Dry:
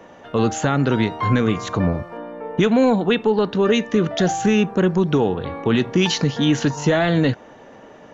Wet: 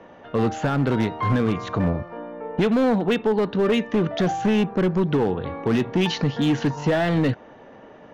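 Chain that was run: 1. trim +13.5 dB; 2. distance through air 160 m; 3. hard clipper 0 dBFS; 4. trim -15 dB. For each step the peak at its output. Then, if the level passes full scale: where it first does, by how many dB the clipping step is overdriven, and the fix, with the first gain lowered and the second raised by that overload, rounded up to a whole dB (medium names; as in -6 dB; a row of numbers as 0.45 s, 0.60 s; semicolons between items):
+8.0 dBFS, +7.0 dBFS, 0.0 dBFS, -15.0 dBFS; step 1, 7.0 dB; step 1 +6.5 dB, step 4 -8 dB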